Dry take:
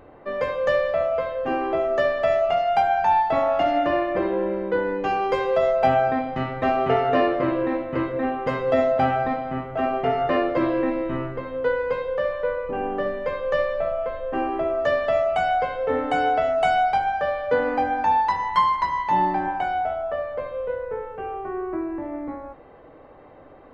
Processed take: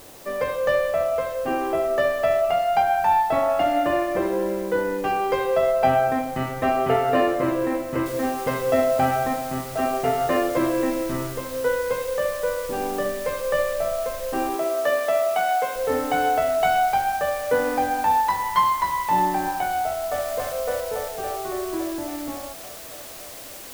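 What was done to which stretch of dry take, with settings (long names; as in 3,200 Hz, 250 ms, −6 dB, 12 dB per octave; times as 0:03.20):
0:08.06: noise floor change −47 dB −40 dB
0:14.56–0:15.76: high-pass filter 260 Hz
0:19.83–0:20.24: delay throw 280 ms, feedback 80%, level −3 dB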